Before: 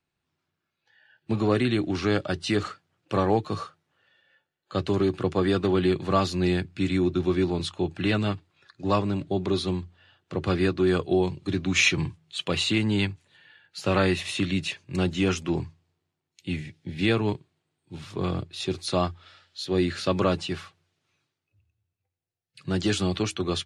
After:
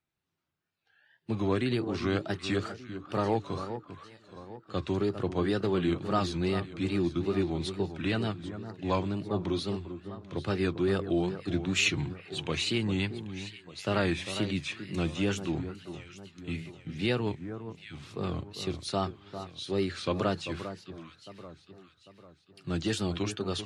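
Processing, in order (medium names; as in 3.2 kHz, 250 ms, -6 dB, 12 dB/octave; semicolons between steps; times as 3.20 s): echo whose repeats swap between lows and highs 398 ms, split 1.5 kHz, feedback 64%, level -10 dB; wow and flutter 140 cents; trim -5.5 dB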